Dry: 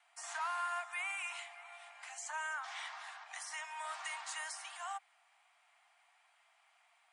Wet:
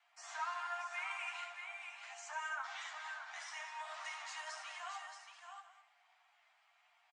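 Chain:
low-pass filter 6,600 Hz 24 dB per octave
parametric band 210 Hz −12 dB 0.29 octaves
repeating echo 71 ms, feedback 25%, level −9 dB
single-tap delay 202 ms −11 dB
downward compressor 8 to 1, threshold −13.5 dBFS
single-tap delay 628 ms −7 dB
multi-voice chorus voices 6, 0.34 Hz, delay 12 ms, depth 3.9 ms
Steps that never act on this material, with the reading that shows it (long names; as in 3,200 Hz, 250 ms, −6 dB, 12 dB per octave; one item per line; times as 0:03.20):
parametric band 210 Hz: nothing at its input below 570 Hz
downward compressor, threshold −13.5 dBFS: peak of its input −27.0 dBFS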